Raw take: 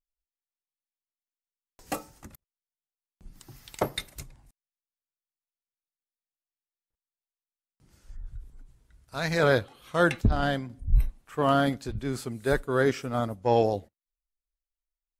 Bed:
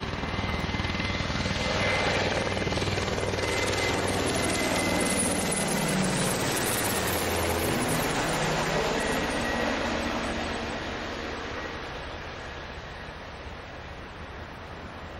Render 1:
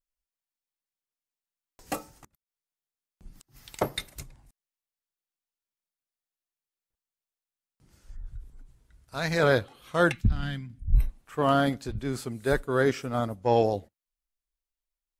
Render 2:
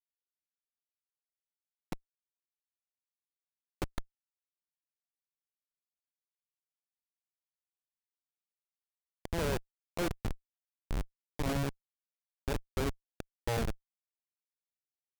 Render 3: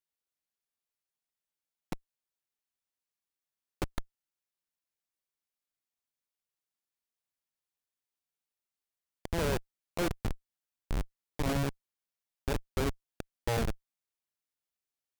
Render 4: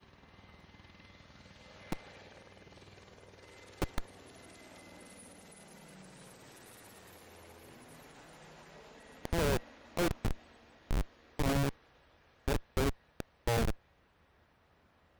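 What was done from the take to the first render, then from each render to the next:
2.11–3.63 s: inverted gate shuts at -35 dBFS, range -28 dB; 10.12–10.95 s: FFT filter 180 Hz 0 dB, 560 Hz -21 dB, 2.4 kHz -2 dB, 4.2 kHz -7 dB
Schmitt trigger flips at -20 dBFS
trim +2 dB
add bed -28 dB

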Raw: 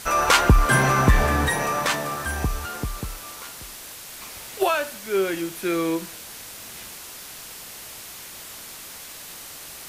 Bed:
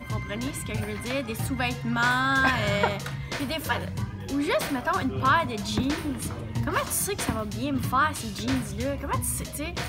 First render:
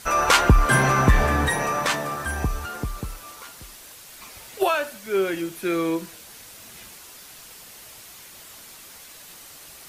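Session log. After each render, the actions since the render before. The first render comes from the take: noise reduction 6 dB, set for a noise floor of -40 dBFS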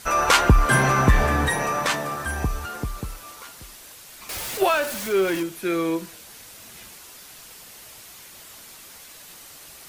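4.29–5.43 s: jump at every zero crossing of -27.5 dBFS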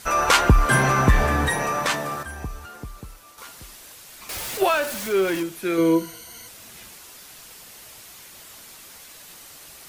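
2.23–3.38 s: gain -7.5 dB; 5.77–6.48 s: rippled EQ curve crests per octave 1.9, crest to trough 14 dB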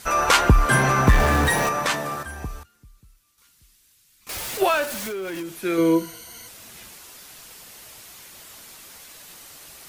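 1.07–1.69 s: jump at every zero crossing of -24 dBFS; 2.63–4.27 s: amplifier tone stack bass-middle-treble 6-0-2; 4.84–5.53 s: compression, threshold -28 dBFS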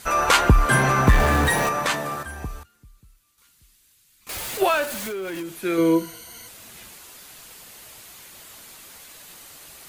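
peaking EQ 5.5 kHz -3.5 dB 0.24 oct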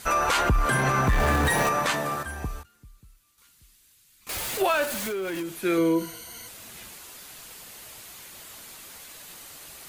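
peak limiter -15 dBFS, peak gain reduction 8.5 dB; endings held to a fixed fall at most 410 dB/s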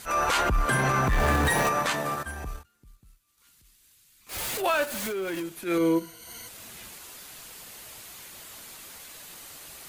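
transient shaper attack -11 dB, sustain -7 dB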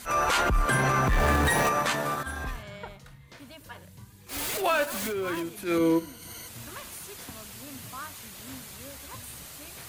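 add bed -17.5 dB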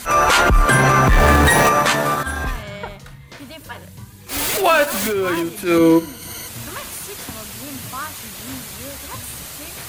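trim +10.5 dB

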